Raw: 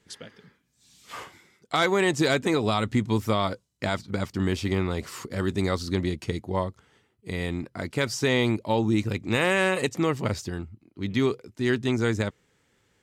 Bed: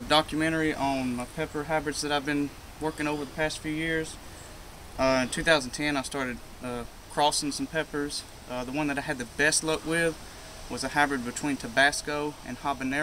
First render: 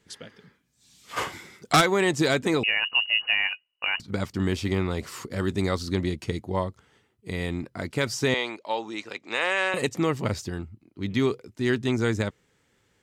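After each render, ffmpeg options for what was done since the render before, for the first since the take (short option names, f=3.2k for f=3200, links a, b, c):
-filter_complex "[0:a]asplit=3[a][b][c];[a]afade=t=out:st=1.16:d=0.02[d];[b]aeval=exprs='0.251*sin(PI/2*2.51*val(0)/0.251)':c=same,afade=t=in:st=1.16:d=0.02,afade=t=out:st=1.8:d=0.02[e];[c]afade=t=in:st=1.8:d=0.02[f];[d][e][f]amix=inputs=3:normalize=0,asettb=1/sr,asplit=3[g][h][i];[g]atrim=end=2.634[j];[h]atrim=start=2.63:end=4,asetpts=PTS-STARTPTS,afade=t=in:d=0.004:c=qsin,afade=t=out:st=1.366:d=0.004:c=qsin,lowpass=f=2.6k:t=q:w=0.5098,lowpass=f=2.6k:t=q:w=0.6013,lowpass=f=2.6k:t=q:w=0.9,lowpass=f=2.6k:t=q:w=2.563,afreqshift=-3000[k];[i]atrim=start=3.996[l];[j][k]acrossfade=d=0.004:c1=hsin:c2=qsin[m];[m][l]acrossfade=d=0.004:c1=qsin:c2=hsin,asettb=1/sr,asplit=3[n][o][p];[n]atrim=end=8.344[q];[o]atrim=start=8.34:end=9.74,asetpts=PTS-STARTPTS,afade=t=in:d=0.004:c=qsin,afade=t=out:st=1.396:d=0.004:c=qsin,highpass=610,lowpass=6.2k[r];[p]atrim=start=9.736[s];[q][r]acrossfade=d=0.004:c1=hsin:c2=qsin[t];[t][s]acrossfade=d=0.004:c1=qsin:c2=hsin"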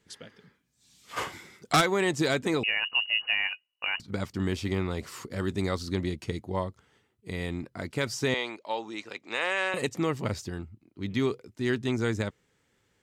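-af "volume=-3.5dB"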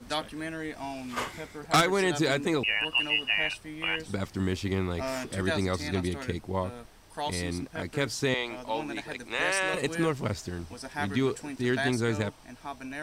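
-filter_complex "[1:a]volume=-9.5dB[a];[0:a][a]amix=inputs=2:normalize=0"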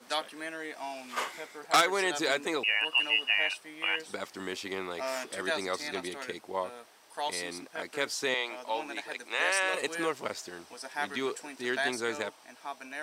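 -af "highpass=470"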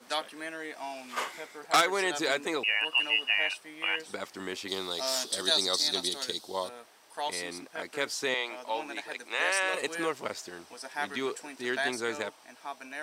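-filter_complex "[0:a]asettb=1/sr,asplit=3[a][b][c];[a]atrim=end=4.684[d];[b]atrim=start=4.68:end=6.69,asetpts=PTS-STARTPTS,afade=t=in:d=0.004:c=qsin,afade=t=out:st=2.006:d=0.004:c=qsin,highshelf=f=3k:t=q:w=3:g=9[e];[c]atrim=start=6.686[f];[d][e]acrossfade=d=0.004:c1=hsin:c2=qsin[g];[g][f]acrossfade=d=0.004:c1=qsin:c2=hsin"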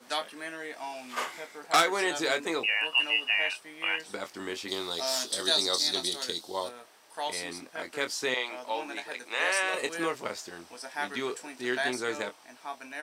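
-filter_complex "[0:a]asplit=2[a][b];[b]adelay=24,volume=-9dB[c];[a][c]amix=inputs=2:normalize=0"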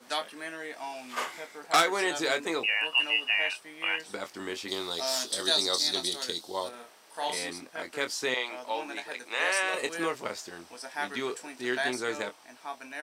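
-filter_complex "[0:a]asplit=3[a][b][c];[a]afade=t=out:st=6.72:d=0.02[d];[b]asplit=2[e][f];[f]adelay=38,volume=-3dB[g];[e][g]amix=inputs=2:normalize=0,afade=t=in:st=6.72:d=0.02,afade=t=out:st=7.49:d=0.02[h];[c]afade=t=in:st=7.49:d=0.02[i];[d][h][i]amix=inputs=3:normalize=0"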